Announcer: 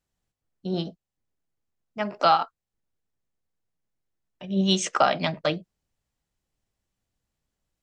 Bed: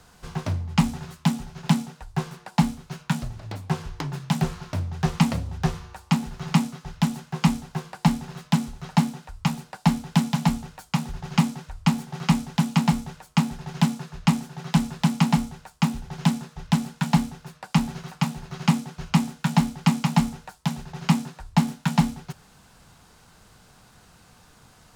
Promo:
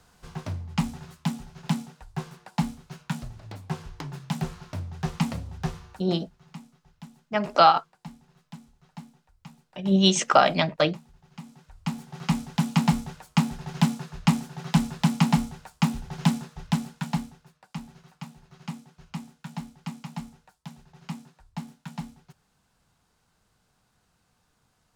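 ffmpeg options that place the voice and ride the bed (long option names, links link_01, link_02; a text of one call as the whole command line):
ffmpeg -i stem1.wav -i stem2.wav -filter_complex "[0:a]adelay=5350,volume=3dB[link_01];[1:a]volume=15.5dB,afade=type=out:start_time=5.93:duration=0.21:silence=0.149624,afade=type=in:start_time=11.42:duration=1.43:silence=0.0841395,afade=type=out:start_time=16.36:duration=1.17:silence=0.177828[link_02];[link_01][link_02]amix=inputs=2:normalize=0" out.wav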